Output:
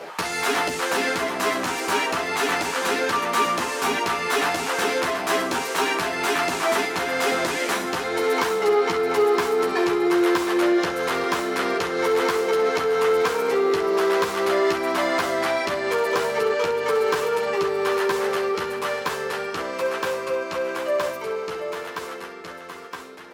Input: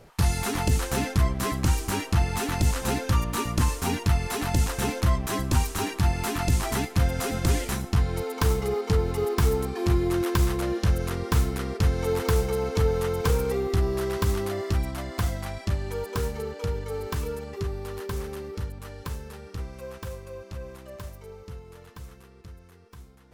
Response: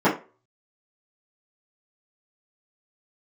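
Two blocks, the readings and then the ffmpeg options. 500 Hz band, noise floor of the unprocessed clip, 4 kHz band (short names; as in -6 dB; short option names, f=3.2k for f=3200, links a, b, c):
+8.5 dB, -49 dBFS, +7.5 dB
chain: -filter_complex "[0:a]acompressor=threshold=-30dB:ratio=6,asplit=2[a][b];[b]aecho=0:1:732:0.299[c];[a][c]amix=inputs=2:normalize=0,asplit=2[d][e];[e]highpass=f=720:p=1,volume=20dB,asoftclip=type=tanh:threshold=-18dB[f];[d][f]amix=inputs=2:normalize=0,lowpass=f=2.1k:p=1,volume=-6dB,highpass=300,asplit=2[g][h];[h]aecho=0:1:12|66:0.631|0.282[i];[g][i]amix=inputs=2:normalize=0,volume=7dB"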